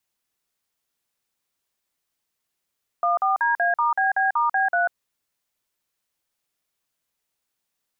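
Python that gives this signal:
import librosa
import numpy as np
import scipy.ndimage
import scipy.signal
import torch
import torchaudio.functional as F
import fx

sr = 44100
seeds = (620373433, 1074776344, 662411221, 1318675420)

y = fx.dtmf(sr, digits='14DA*BB*B3', tone_ms=143, gap_ms=46, level_db=-20.5)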